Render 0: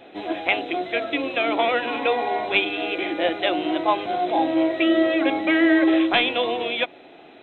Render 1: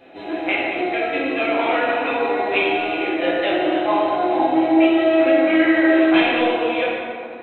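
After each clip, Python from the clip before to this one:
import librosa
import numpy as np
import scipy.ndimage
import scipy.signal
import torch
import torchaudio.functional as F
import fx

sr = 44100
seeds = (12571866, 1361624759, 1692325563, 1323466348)

y = fx.notch(x, sr, hz=3400.0, q=7.5)
y = fx.rev_plate(y, sr, seeds[0], rt60_s=2.3, hf_ratio=0.5, predelay_ms=0, drr_db=-6.5)
y = y * librosa.db_to_amplitude(-4.0)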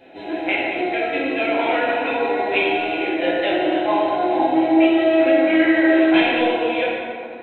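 y = fx.notch(x, sr, hz=1200.0, q=5.2)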